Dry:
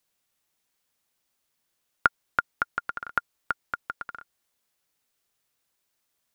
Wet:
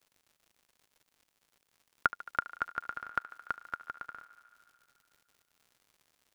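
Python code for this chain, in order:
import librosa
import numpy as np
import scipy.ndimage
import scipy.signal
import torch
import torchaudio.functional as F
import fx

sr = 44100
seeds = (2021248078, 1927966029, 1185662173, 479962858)

y = fx.echo_thinned(x, sr, ms=73, feedback_pct=83, hz=260.0, wet_db=-17.0)
y = fx.dmg_crackle(y, sr, seeds[0], per_s=150.0, level_db=-46.0)
y = y * 10.0 ** (-6.5 / 20.0)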